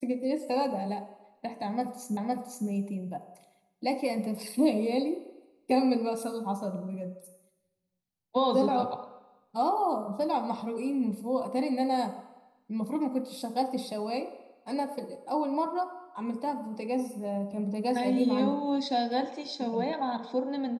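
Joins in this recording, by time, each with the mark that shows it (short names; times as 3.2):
2.17 repeat of the last 0.51 s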